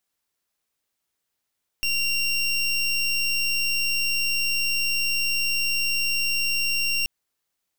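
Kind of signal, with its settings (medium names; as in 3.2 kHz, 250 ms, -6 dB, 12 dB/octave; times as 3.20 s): pulse 2.76 kHz, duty 26% -23.5 dBFS 5.23 s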